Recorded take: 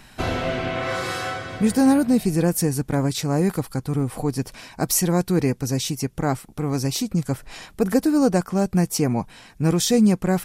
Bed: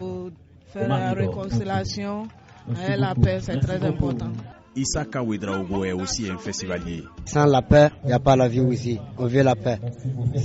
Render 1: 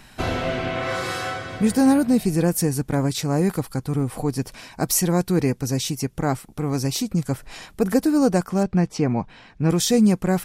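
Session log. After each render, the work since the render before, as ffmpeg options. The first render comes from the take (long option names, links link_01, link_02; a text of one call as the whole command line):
ffmpeg -i in.wav -filter_complex "[0:a]asettb=1/sr,asplit=3[link_01][link_02][link_03];[link_01]atrim=end=8.634[link_04];[link_02]atrim=start=8.63:end=9.7,asetpts=PTS-STARTPTS,afade=type=in:duration=0.004:curve=qsin,afade=type=out:start_time=1.066:duration=0.004:curve=qsin,lowpass=3700[link_05];[link_03]atrim=start=9.696[link_06];[link_04][link_05]acrossfade=duration=0.004:curve1=hsin:curve2=qsin[link_07];[link_07][link_06]acrossfade=duration=0.004:curve1=qsin:curve2=hsin" out.wav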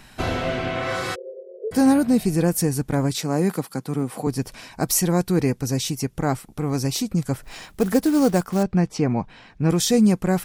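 ffmpeg -i in.wav -filter_complex "[0:a]asplit=3[link_01][link_02][link_03];[link_01]afade=type=out:start_time=1.14:duration=0.02[link_04];[link_02]asuperpass=centerf=470:order=20:qfactor=1.9,afade=type=in:start_time=1.14:duration=0.02,afade=type=out:start_time=1.71:duration=0.02[link_05];[link_03]afade=type=in:start_time=1.71:duration=0.02[link_06];[link_04][link_05][link_06]amix=inputs=3:normalize=0,asettb=1/sr,asplit=3[link_07][link_08][link_09];[link_07]atrim=end=3.164[link_10];[link_08]atrim=start=3.16:end=4.27,asetpts=PTS-STARTPTS,afade=type=in:duration=0.004:curve=qsin,afade=type=out:start_time=1.106:duration=0.004:curve=qsin,highpass=frequency=150:width=0.5412,highpass=frequency=150:width=1.3066[link_11];[link_09]atrim=start=4.266[link_12];[link_10][link_11]acrossfade=duration=0.004:curve1=hsin:curve2=qsin[link_13];[link_13][link_12]acrossfade=duration=0.004:curve1=qsin:curve2=hsin,asettb=1/sr,asplit=3[link_14][link_15][link_16];[link_14]atrim=end=7.434[link_17];[link_15]atrim=start=7.43:end=8.63,asetpts=PTS-STARTPTS,afade=type=in:duration=0.004:curve=qsin,afade=type=out:start_time=1.196:duration=0.004:curve=qsin,acrusher=bits=5:mode=log:mix=0:aa=0.000001[link_18];[link_16]atrim=start=8.626[link_19];[link_17][link_18]acrossfade=duration=0.004:curve1=hsin:curve2=qsin[link_20];[link_20][link_19]acrossfade=duration=0.004:curve1=qsin:curve2=hsin" out.wav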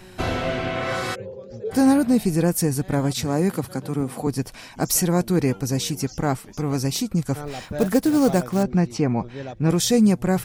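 ffmpeg -i in.wav -i bed.wav -filter_complex "[1:a]volume=-16.5dB[link_01];[0:a][link_01]amix=inputs=2:normalize=0" out.wav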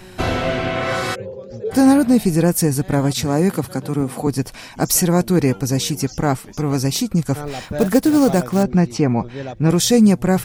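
ffmpeg -i in.wav -af "volume=4.5dB,alimiter=limit=-3dB:level=0:latency=1" out.wav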